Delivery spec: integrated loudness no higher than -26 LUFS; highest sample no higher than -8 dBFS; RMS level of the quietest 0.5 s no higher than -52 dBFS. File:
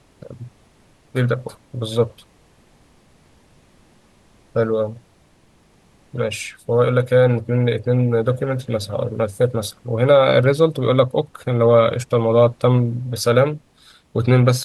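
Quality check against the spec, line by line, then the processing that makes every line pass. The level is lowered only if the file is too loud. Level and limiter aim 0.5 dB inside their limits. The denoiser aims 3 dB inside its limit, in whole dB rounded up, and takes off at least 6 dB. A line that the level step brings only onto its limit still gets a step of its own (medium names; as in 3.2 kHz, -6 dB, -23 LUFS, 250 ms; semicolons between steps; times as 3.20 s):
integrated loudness -18.5 LUFS: fail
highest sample -3.0 dBFS: fail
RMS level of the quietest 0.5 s -55 dBFS: pass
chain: trim -8 dB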